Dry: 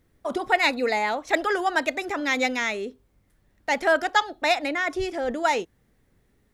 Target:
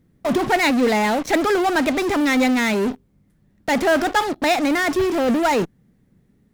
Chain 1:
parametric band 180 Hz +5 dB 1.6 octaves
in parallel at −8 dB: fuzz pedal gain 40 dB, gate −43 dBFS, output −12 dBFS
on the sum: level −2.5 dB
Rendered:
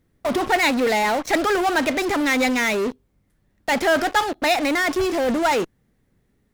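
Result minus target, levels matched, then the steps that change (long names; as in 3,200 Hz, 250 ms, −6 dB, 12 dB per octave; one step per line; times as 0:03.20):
250 Hz band −3.0 dB
change: parametric band 180 Hz +16 dB 1.6 octaves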